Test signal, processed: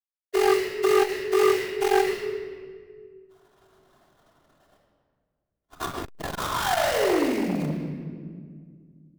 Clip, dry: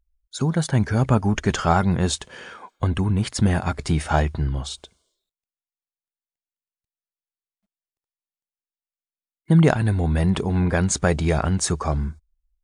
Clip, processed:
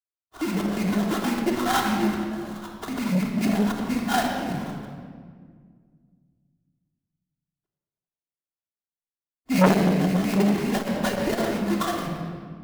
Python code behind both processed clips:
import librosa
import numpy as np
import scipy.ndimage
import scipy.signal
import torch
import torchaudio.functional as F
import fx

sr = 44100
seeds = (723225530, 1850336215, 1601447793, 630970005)

y = fx.sine_speech(x, sr)
y = fx.sample_hold(y, sr, seeds[0], rate_hz=2400.0, jitter_pct=20)
y = fx.room_shoebox(y, sr, seeds[1], volume_m3=2900.0, walls='mixed', distance_m=3.2)
y = fx.transformer_sat(y, sr, knee_hz=930.0)
y = y * 10.0 ** (-7.0 / 20.0)